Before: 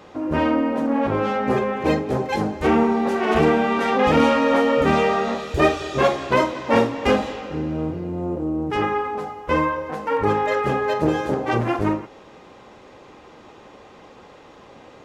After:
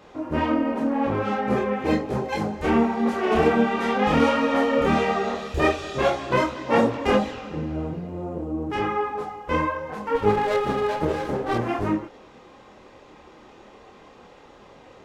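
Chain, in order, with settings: chorus voices 6, 1.2 Hz, delay 27 ms, depth 3 ms; 10.15–11.58 running maximum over 9 samples

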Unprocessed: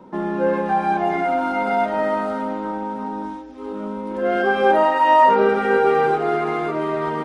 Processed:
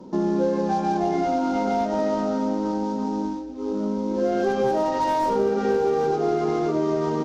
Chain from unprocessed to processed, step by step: CVSD 32 kbps; one-sided clip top -12 dBFS; bell 2000 Hz -12.5 dB 2.4 oct; compressor, threshold -23 dBFS, peak gain reduction 7.5 dB; bell 300 Hz +3 dB 1.3 oct; gain +3 dB

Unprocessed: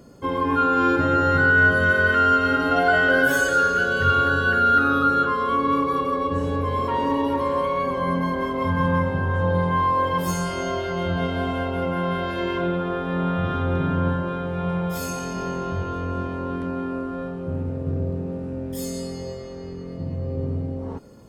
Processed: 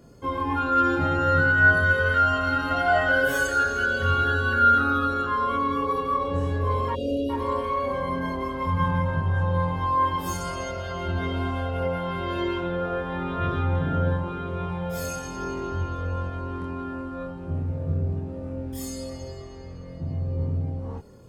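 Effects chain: chorus voices 6, 0.31 Hz, delay 25 ms, depth 1.4 ms; spectral delete 6.95–7.3, 750–2400 Hz

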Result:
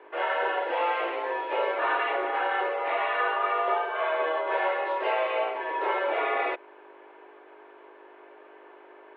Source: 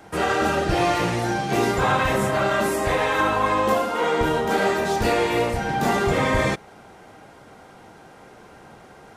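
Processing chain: hum 50 Hz, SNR 13 dB; mistuned SSB +170 Hz 210–2900 Hz; gain -5.5 dB

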